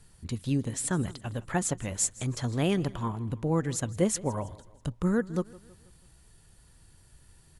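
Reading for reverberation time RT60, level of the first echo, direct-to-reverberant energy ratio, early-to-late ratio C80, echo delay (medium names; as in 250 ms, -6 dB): no reverb, -20.5 dB, no reverb, no reverb, 162 ms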